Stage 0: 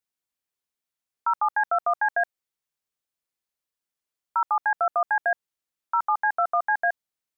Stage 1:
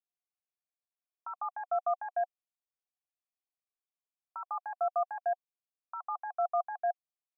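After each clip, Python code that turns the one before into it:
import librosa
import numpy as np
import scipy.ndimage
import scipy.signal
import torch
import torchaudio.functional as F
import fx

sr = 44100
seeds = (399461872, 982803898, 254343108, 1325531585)

y = fx.vowel_filter(x, sr, vowel='a')
y = y * 10.0 ** (-2.5 / 20.0)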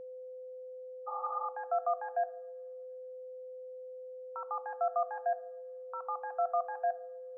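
y = fx.rev_double_slope(x, sr, seeds[0], early_s=0.43, late_s=1.7, knee_db=-20, drr_db=11.0)
y = y + 10.0 ** (-42.0 / 20.0) * np.sin(2.0 * np.pi * 510.0 * np.arange(len(y)) / sr)
y = fx.spec_repair(y, sr, seeds[1], start_s=1.1, length_s=0.33, low_hz=530.0, high_hz=1400.0, source='after')
y = y * 10.0 ** (-1.0 / 20.0)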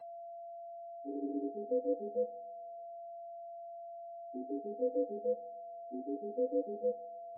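y = fx.octave_mirror(x, sr, pivot_hz=590.0)
y = y * 10.0 ** (-1.0 / 20.0)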